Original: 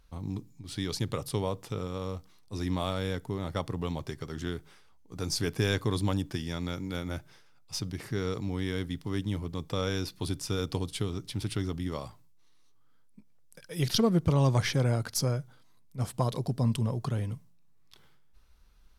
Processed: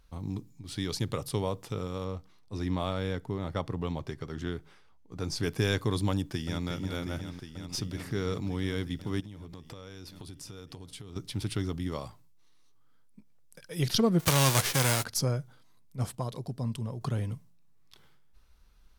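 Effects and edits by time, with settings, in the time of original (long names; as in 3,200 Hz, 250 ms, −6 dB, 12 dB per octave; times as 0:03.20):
0:02.04–0:05.43: high-shelf EQ 5,700 Hz −10 dB
0:06.11–0:06.67: delay throw 360 ms, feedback 85%, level −8.5 dB
0:09.20–0:11.16: downward compressor 12 to 1, threshold −40 dBFS
0:14.19–0:15.03: spectral envelope flattened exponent 0.3
0:16.15–0:17.01: clip gain −6 dB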